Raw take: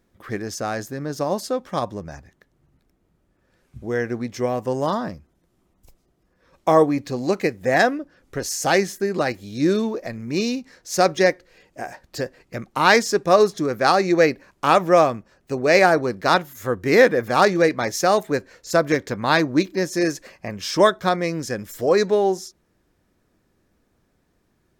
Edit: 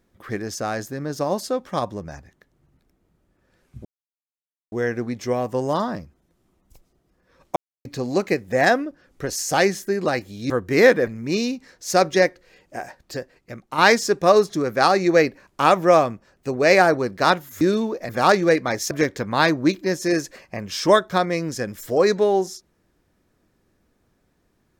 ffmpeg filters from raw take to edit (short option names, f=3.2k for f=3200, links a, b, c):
-filter_complex "[0:a]asplit=10[a][b][c][d][e][f][g][h][i][j];[a]atrim=end=3.85,asetpts=PTS-STARTPTS,afade=t=out:st=3.846:d=0.004:c=hsin,apad=pad_dur=0.87[k];[b]atrim=start=3.85:end=6.69,asetpts=PTS-STARTPTS,afade=t=in:d=0.004:c=hsin,afade=t=out:st=2.836:d=0.004:c=hsin[l];[c]atrim=start=6.69:end=6.98,asetpts=PTS-STARTPTS,volume=0[m];[d]atrim=start=6.98:end=9.632,asetpts=PTS-STARTPTS,afade=t=in:d=0.004:c=hsin[n];[e]atrim=start=16.648:end=17.222[o];[f]atrim=start=10.108:end=12.82,asetpts=PTS-STARTPTS,afade=t=out:st=1.722:d=0.99:c=qua:silence=0.473151[p];[g]atrim=start=12.82:end=16.652,asetpts=PTS-STARTPTS,afade=t=in:d=0.004:c=hsin:silence=0.473151[q];[h]atrim=start=9.628:end=10.112[r];[i]atrim=start=17.218:end=18.042[s];[j]atrim=start=18.818[t];[k][l][m][n]concat=n=4:v=0:a=1[u];[u][o]acrossfade=d=0.004:c1=hsin:c2=hsin[v];[p][q]concat=n=2:v=0:a=1[w];[v][w]acrossfade=d=0.004:c1=hsin:c2=hsin[x];[x][r]acrossfade=d=0.004:c1=hsin:c2=hsin[y];[y][s]acrossfade=d=0.004:c1=hsin:c2=hsin[z];[z][t]acrossfade=d=0.004:c1=hsin:c2=hsin"